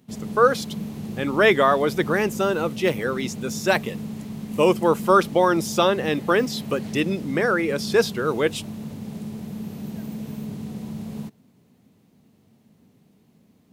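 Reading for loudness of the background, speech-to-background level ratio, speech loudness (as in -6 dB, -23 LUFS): -33.5 LUFS, 12.0 dB, -21.5 LUFS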